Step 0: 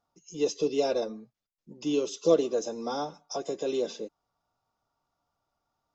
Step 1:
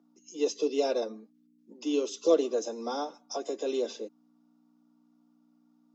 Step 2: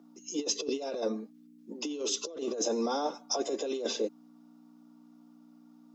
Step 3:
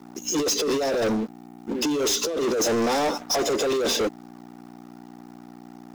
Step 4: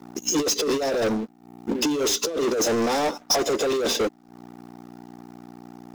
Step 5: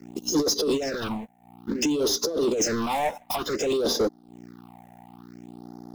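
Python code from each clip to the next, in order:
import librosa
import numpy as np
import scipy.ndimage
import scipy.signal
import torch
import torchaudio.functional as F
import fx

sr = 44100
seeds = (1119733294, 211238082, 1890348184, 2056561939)

y1 = fx.add_hum(x, sr, base_hz=60, snr_db=21)
y1 = scipy.signal.sosfilt(scipy.signal.butter(8, 220.0, 'highpass', fs=sr, output='sos'), y1)
y1 = y1 * 10.0 ** (-1.0 / 20.0)
y2 = fx.over_compress(y1, sr, threshold_db=-36.0, ratio=-1.0)
y2 = y2 * 10.0 ** (3.0 / 20.0)
y3 = fx.leveller(y2, sr, passes=5)
y3 = y3 * 10.0 ** (-1.5 / 20.0)
y4 = fx.transient(y3, sr, attack_db=5, sustain_db=-11)
y5 = fx.phaser_stages(y4, sr, stages=6, low_hz=330.0, high_hz=2600.0, hz=0.56, feedback_pct=25)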